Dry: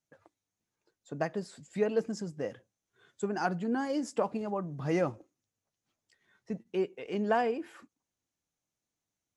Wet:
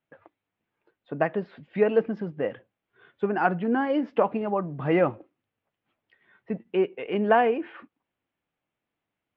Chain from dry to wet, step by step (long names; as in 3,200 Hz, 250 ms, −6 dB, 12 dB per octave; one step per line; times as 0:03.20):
Butterworth low-pass 3,100 Hz 36 dB per octave
low-shelf EQ 170 Hz −7.5 dB
level +8.5 dB